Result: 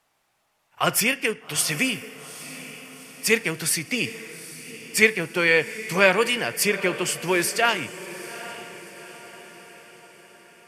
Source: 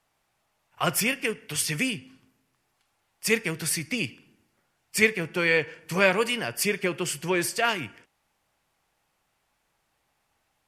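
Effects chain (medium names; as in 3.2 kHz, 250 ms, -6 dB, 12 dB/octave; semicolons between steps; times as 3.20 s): bass shelf 140 Hz -9 dB; echo that smears into a reverb 819 ms, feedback 52%, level -14.5 dB; trim +4 dB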